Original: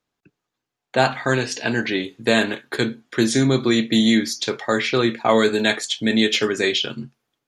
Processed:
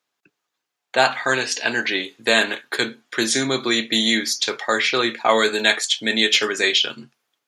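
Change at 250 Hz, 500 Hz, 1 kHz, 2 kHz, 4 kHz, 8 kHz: -6.5 dB, -2.0 dB, +1.5 dB, +3.5 dB, +4.0 dB, +4.5 dB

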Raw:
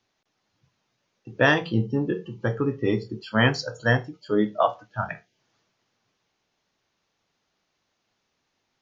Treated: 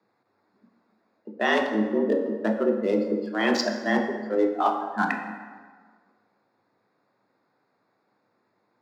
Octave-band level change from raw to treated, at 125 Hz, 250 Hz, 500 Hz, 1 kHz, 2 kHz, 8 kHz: under -10 dB, +1.0 dB, +1.5 dB, +1.5 dB, -3.0 dB, no reading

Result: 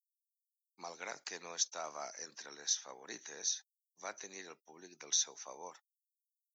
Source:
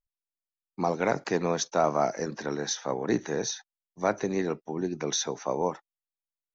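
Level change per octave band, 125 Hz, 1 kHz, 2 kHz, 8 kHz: under -30 dB, -18.0 dB, -12.0 dB, no reading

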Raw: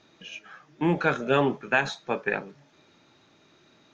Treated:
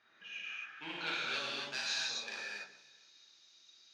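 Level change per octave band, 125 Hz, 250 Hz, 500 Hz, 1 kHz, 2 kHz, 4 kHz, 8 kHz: -28.0 dB, -24.5 dB, -23.0 dB, -16.5 dB, -10.0 dB, +2.5 dB, no reading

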